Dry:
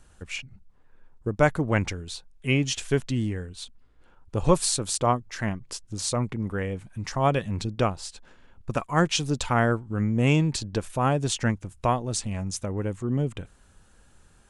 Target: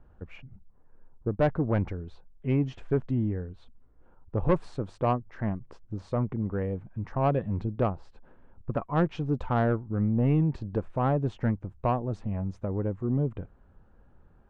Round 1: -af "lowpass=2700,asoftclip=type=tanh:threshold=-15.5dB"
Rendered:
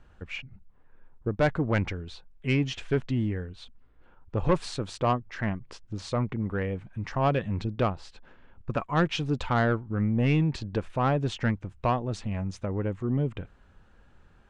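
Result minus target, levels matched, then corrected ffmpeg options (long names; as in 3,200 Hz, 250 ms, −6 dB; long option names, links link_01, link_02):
2,000 Hz band +8.0 dB
-af "lowpass=990,asoftclip=type=tanh:threshold=-15.5dB"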